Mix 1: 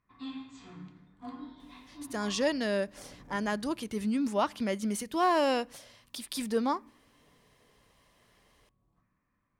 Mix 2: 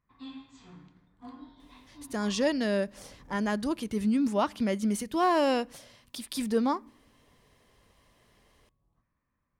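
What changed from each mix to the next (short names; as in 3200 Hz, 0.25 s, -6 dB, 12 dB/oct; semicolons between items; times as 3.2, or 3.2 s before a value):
speech: add low shelf 290 Hz +6.5 dB; background: send -10.5 dB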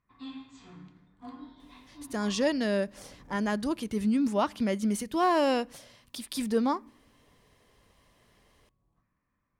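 background: send +7.0 dB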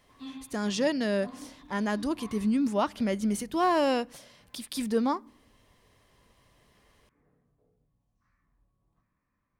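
speech: entry -1.60 s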